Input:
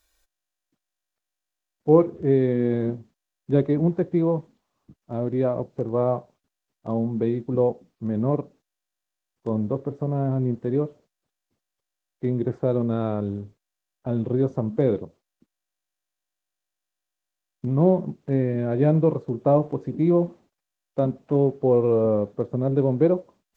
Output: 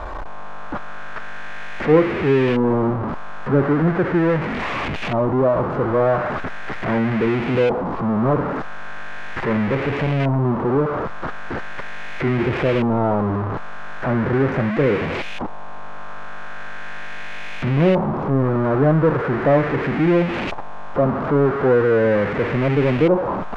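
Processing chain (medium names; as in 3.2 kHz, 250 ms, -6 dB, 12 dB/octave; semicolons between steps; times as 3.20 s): jump at every zero crossing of -19 dBFS; LFO low-pass saw up 0.39 Hz 930–2600 Hz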